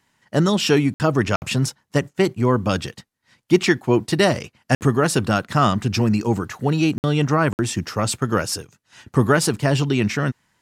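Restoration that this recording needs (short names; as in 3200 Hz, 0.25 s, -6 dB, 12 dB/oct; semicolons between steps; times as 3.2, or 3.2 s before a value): interpolate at 0.94/1.36/4.75/6.98/7.53, 59 ms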